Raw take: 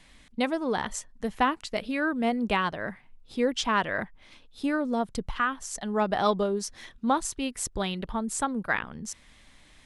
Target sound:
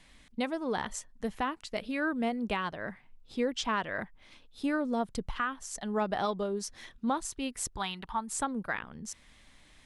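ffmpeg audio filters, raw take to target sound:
-filter_complex "[0:a]asettb=1/sr,asplit=3[s0][s1][s2];[s0]atrim=end=2.754[s3];[s1]atrim=start=2.75:end=3.94,asetpts=PTS-STARTPTS,afade=t=in:d=0.004:c=qsin,afade=t=out:st=1.186:d=0.004:c=qsin,equalizer=f=10000:w=7.2:g=-10[s4];[s2]atrim=start=3.936[s5];[s3][s4]acrossfade=d=0.004:c1=hsin:c2=qsin[s6];[s6][s5]acrossfade=d=0.004:c1=qsin:c2=hsin,alimiter=limit=0.133:level=0:latency=1:release=478,asettb=1/sr,asplit=3[s7][s8][s9];[s7]atrim=end=7.764[s10];[s8]atrim=start=7.76:end=8.32,asetpts=PTS-STARTPTS,afade=t=in:d=0.004:c=qsin,afade=t=out:st=0.556:d=0.004:c=qsin,lowshelf=f=700:t=q:w=3:g=-7[s11];[s9]atrim=start=8.316[s12];[s10][s11]acrossfade=d=0.004:c1=hsin:c2=qsin[s13];[s13][s12]acrossfade=d=0.004:c1=qsin:c2=hsin,volume=0.708"

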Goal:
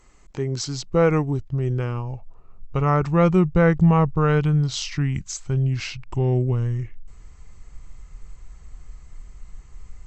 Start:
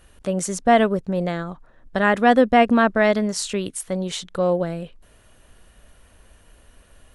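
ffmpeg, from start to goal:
-af "asubboost=boost=7:cutoff=180,asetrate=31311,aresample=44100,volume=0.75"

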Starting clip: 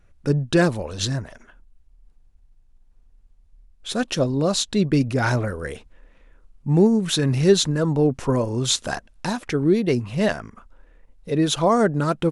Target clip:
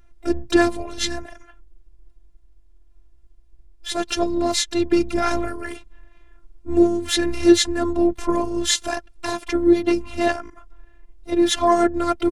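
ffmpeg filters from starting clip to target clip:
-filter_complex "[0:a]asplit=4[s0][s1][s2][s3];[s1]asetrate=22050,aresample=44100,atempo=2,volume=0.355[s4];[s2]asetrate=37084,aresample=44100,atempo=1.18921,volume=0.158[s5];[s3]asetrate=66075,aresample=44100,atempo=0.66742,volume=0.126[s6];[s0][s4][s5][s6]amix=inputs=4:normalize=0,afftfilt=real='hypot(re,im)*cos(PI*b)':imag='0':win_size=512:overlap=0.75,volume=1.68"

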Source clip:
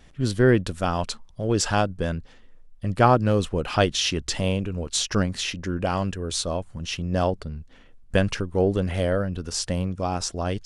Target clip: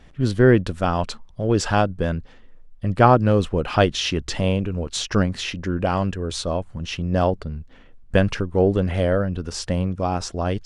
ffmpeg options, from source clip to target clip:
-af "highshelf=f=4900:g=-11,volume=1.5"

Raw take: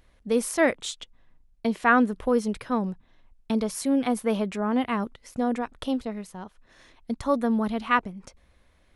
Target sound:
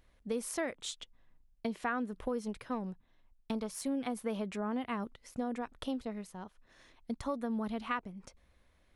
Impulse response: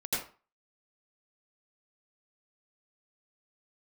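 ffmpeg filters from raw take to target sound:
-filter_complex "[0:a]acompressor=threshold=0.0562:ratio=5,asettb=1/sr,asplit=3[s0][s1][s2];[s0]atrim=end=2.454[s3];[s1]atrim=start=2.45:end=3.88,asetpts=PTS-STARTPTS,afade=t=in:d=0.004:c=qsin,afade=t=out:st=1.426:d=0.004:c=qsin,aeval=exprs='0.178*(cos(1*acos(clip(val(0)/0.178,-1,1)))-cos(1*PI/2))+0.00708*(cos(7*acos(clip(val(0)/0.178,-1,1)))-cos(7*PI/2))':c=same[s4];[s2]atrim=start=3.876[s5];[s3][s4]acrossfade=d=0.004:c1=hsin:c2=qsin[s6];[s6][s5]acrossfade=d=0.004:c1=qsin:c2=hsin,volume=0.473"

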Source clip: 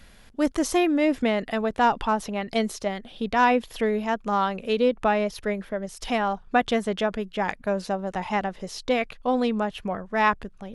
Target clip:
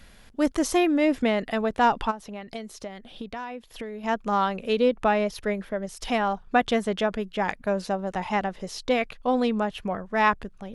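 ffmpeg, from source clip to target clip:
-filter_complex "[0:a]asplit=3[s0][s1][s2];[s0]afade=t=out:st=2.1:d=0.02[s3];[s1]acompressor=threshold=0.02:ratio=6,afade=t=in:st=2.1:d=0.02,afade=t=out:st=4.03:d=0.02[s4];[s2]afade=t=in:st=4.03:d=0.02[s5];[s3][s4][s5]amix=inputs=3:normalize=0"

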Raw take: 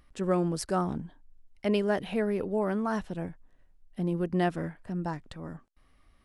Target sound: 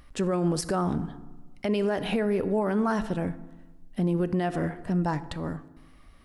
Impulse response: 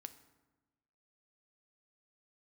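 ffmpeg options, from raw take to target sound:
-filter_complex "[0:a]asplit=2[s0][s1];[1:a]atrim=start_sample=2205[s2];[s1][s2]afir=irnorm=-1:irlink=0,volume=3.16[s3];[s0][s3]amix=inputs=2:normalize=0,alimiter=limit=0.133:level=0:latency=1:release=78"

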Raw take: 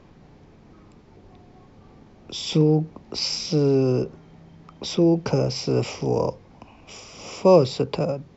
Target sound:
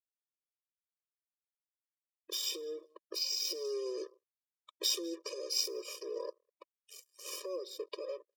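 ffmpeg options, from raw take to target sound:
-filter_complex "[0:a]aeval=exprs='sgn(val(0))*max(abs(val(0))-0.0126,0)':c=same,acompressor=threshold=0.0316:ratio=16,alimiter=level_in=1.41:limit=0.0631:level=0:latency=1:release=206,volume=0.708,highshelf=f=3900:g=11.5,aecho=1:1:198|396|594:0.0841|0.0345|0.0141,acrusher=bits=7:mix=0:aa=0.5,asettb=1/sr,asplit=3[s0][s1][s2];[s0]atrim=end=3.554[s3];[s1]atrim=start=3.55:end=5.68,asetpts=PTS-STARTPTS,afade=t=in:d=0.004:c=qsin,afade=t=out:st=2.126:d=0.004:c=qsin,equalizer=f=6800:w=0.4:g=5[s4];[s2]atrim=start=5.676[s5];[s3][s4]acrossfade=d=0.004:c1=hsin:c2=qsin[s6];[s6][s5]acrossfade=d=0.004:c1=qsin:c2=hsin,afftdn=nr=24:nf=-53,afftfilt=real='re*eq(mod(floor(b*sr/1024/320),2),1)':imag='im*eq(mod(floor(b*sr/1024/320),2),1)':win_size=1024:overlap=0.75"

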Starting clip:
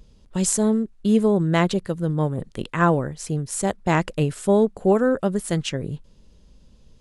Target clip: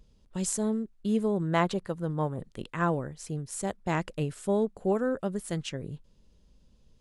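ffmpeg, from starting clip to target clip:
-filter_complex "[0:a]asettb=1/sr,asplit=3[s0][s1][s2];[s0]atrim=end=1.424[s3];[s1]atrim=start=1.42:end=2.38,asetpts=PTS-STARTPTS,afade=t=in:d=0.004:c=qsin,afade=t=out:st=0.956:d=0.004:c=qsin,equalizer=f=960:w=0.86:g=7[s4];[s2]atrim=start=2.376[s5];[s3][s4]acrossfade=d=0.004:c1=hsin:c2=qsin[s6];[s6][s5]acrossfade=d=0.004:c1=qsin:c2=hsin,volume=0.355"

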